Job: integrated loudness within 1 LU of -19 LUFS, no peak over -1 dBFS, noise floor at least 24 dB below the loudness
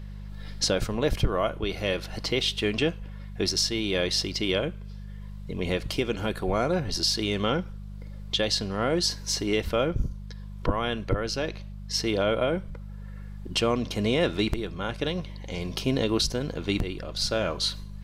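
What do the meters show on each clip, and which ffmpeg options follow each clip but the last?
hum 50 Hz; harmonics up to 200 Hz; hum level -36 dBFS; loudness -27.5 LUFS; peak -12.5 dBFS; loudness target -19.0 LUFS
-> -af "bandreject=f=50:t=h:w=4,bandreject=f=100:t=h:w=4,bandreject=f=150:t=h:w=4,bandreject=f=200:t=h:w=4"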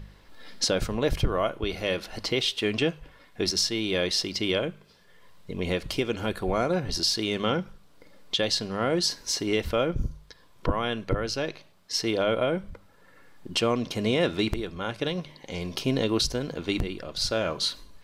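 hum none; loudness -27.5 LUFS; peak -12.0 dBFS; loudness target -19.0 LUFS
-> -af "volume=8.5dB"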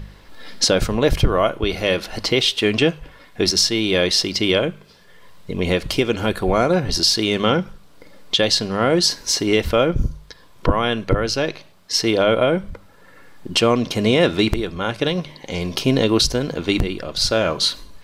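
loudness -19.0 LUFS; peak -3.5 dBFS; noise floor -47 dBFS

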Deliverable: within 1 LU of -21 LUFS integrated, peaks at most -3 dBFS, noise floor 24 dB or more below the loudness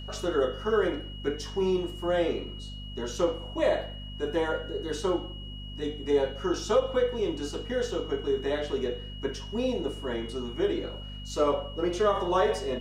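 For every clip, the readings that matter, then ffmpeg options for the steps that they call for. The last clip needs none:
hum 50 Hz; harmonics up to 250 Hz; hum level -38 dBFS; steady tone 2900 Hz; tone level -44 dBFS; loudness -29.5 LUFS; peak -13.0 dBFS; loudness target -21.0 LUFS
-> -af "bandreject=f=50:t=h:w=4,bandreject=f=100:t=h:w=4,bandreject=f=150:t=h:w=4,bandreject=f=200:t=h:w=4,bandreject=f=250:t=h:w=4"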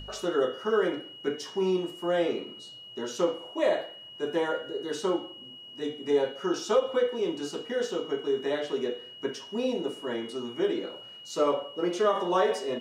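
hum none; steady tone 2900 Hz; tone level -44 dBFS
-> -af "bandreject=f=2.9k:w=30"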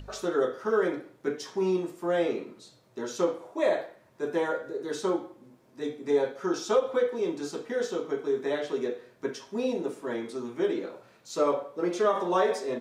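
steady tone none; loudness -29.5 LUFS; peak -13.0 dBFS; loudness target -21.0 LUFS
-> -af "volume=8.5dB"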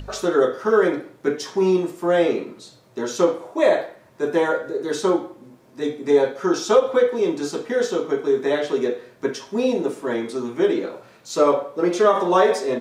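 loudness -21.0 LUFS; peak -4.5 dBFS; noise floor -53 dBFS

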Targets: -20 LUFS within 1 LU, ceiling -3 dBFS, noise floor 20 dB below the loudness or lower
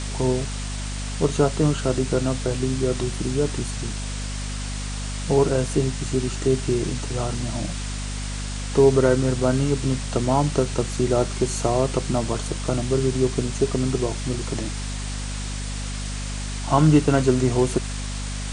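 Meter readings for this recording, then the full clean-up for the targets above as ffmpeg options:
hum 50 Hz; harmonics up to 250 Hz; hum level -27 dBFS; noise floor -29 dBFS; noise floor target -44 dBFS; loudness -23.5 LUFS; peak -4.5 dBFS; loudness target -20.0 LUFS
-> -af "bandreject=f=50:t=h:w=6,bandreject=f=100:t=h:w=6,bandreject=f=150:t=h:w=6,bandreject=f=200:t=h:w=6,bandreject=f=250:t=h:w=6"
-af "afftdn=nr=15:nf=-29"
-af "volume=3.5dB,alimiter=limit=-3dB:level=0:latency=1"

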